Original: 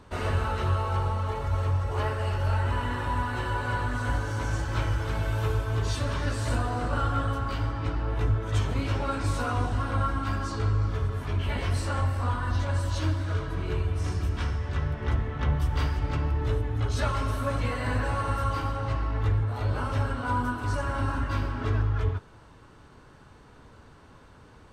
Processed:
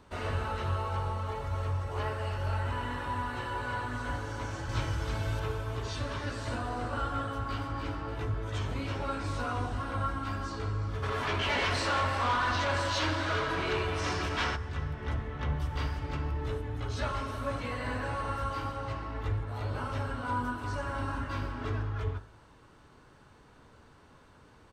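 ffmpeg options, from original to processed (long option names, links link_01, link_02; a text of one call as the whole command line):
ffmpeg -i in.wav -filter_complex "[0:a]asettb=1/sr,asplit=3[link_01][link_02][link_03];[link_01]atrim=end=4.694[link_04];[link_02]atrim=start=4.69:end=5.4,asetpts=PTS-STARTPTS,afade=type=in:duration=0.004:curve=qsin,afade=type=out:start_time=0.706:duration=0.004:curve=qsin,bass=frequency=250:gain=5,treble=frequency=4000:gain=9[link_05];[link_03]atrim=start=5.396[link_06];[link_04][link_05]acrossfade=duration=0.004:curve1=hsin:curve2=qsin[link_07];[link_07][link_06]acrossfade=duration=0.004:curve1=qsin:curve2=hsin,asplit=2[link_08][link_09];[link_09]afade=type=in:start_time=7.2:duration=0.01,afade=type=out:start_time=7.78:duration=0.01,aecho=0:1:290|580|870|1160|1450:0.501187|0.200475|0.08019|0.032076|0.0128304[link_10];[link_08][link_10]amix=inputs=2:normalize=0,asplit=3[link_11][link_12][link_13];[link_11]afade=type=out:start_time=11.02:duration=0.02[link_14];[link_12]asplit=2[link_15][link_16];[link_16]highpass=frequency=720:poles=1,volume=22dB,asoftclip=type=tanh:threshold=-16.5dB[link_17];[link_15][link_17]amix=inputs=2:normalize=0,lowpass=frequency=7700:poles=1,volume=-6dB,afade=type=in:start_time=11.02:duration=0.02,afade=type=out:start_time=14.55:duration=0.02[link_18];[link_13]afade=type=in:start_time=14.55:duration=0.02[link_19];[link_14][link_18][link_19]amix=inputs=3:normalize=0,acrossover=split=6500[link_20][link_21];[link_21]acompressor=threshold=-58dB:ratio=4:attack=1:release=60[link_22];[link_20][link_22]amix=inputs=2:normalize=0,lowshelf=frequency=170:gain=-3.5,bandreject=frequency=53.09:width_type=h:width=4,bandreject=frequency=106.18:width_type=h:width=4,bandreject=frequency=159.27:width_type=h:width=4,bandreject=frequency=212.36:width_type=h:width=4,bandreject=frequency=265.45:width_type=h:width=4,bandreject=frequency=318.54:width_type=h:width=4,bandreject=frequency=371.63:width_type=h:width=4,bandreject=frequency=424.72:width_type=h:width=4,bandreject=frequency=477.81:width_type=h:width=4,bandreject=frequency=530.9:width_type=h:width=4,bandreject=frequency=583.99:width_type=h:width=4,bandreject=frequency=637.08:width_type=h:width=4,bandreject=frequency=690.17:width_type=h:width=4,bandreject=frequency=743.26:width_type=h:width=4,bandreject=frequency=796.35:width_type=h:width=4,bandreject=frequency=849.44:width_type=h:width=4,bandreject=frequency=902.53:width_type=h:width=4,bandreject=frequency=955.62:width_type=h:width=4,bandreject=frequency=1008.71:width_type=h:width=4,bandreject=frequency=1061.8:width_type=h:width=4,bandreject=frequency=1114.89:width_type=h:width=4,bandreject=frequency=1167.98:width_type=h:width=4,bandreject=frequency=1221.07:width_type=h:width=4,bandreject=frequency=1274.16:width_type=h:width=4,bandreject=frequency=1327.25:width_type=h:width=4,bandreject=frequency=1380.34:width_type=h:width=4,bandreject=frequency=1433.43:width_type=h:width=4,bandreject=frequency=1486.52:width_type=h:width=4,bandreject=frequency=1539.61:width_type=h:width=4,bandreject=frequency=1592.7:width_type=h:width=4,bandreject=frequency=1645.79:width_type=h:width=4,bandreject=frequency=1698.88:width_type=h:width=4,bandreject=frequency=1751.97:width_type=h:width=4,bandreject=frequency=1805.06:width_type=h:width=4,volume=-3.5dB" out.wav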